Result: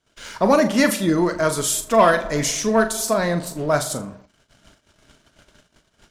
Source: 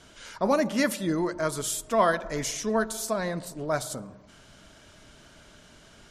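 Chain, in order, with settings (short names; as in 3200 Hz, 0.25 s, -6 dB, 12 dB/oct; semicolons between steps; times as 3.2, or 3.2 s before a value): sample leveller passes 1; flutter echo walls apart 6.9 m, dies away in 0.24 s; gate -50 dBFS, range -24 dB; gain +4.5 dB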